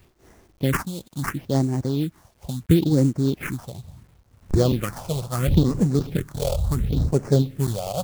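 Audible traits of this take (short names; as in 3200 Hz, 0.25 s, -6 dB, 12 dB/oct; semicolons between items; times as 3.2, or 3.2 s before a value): aliases and images of a low sample rate 3900 Hz, jitter 20%; phasing stages 4, 0.73 Hz, lowest notch 270–3500 Hz; a quantiser's noise floor 10-bit, dither none; noise-modulated level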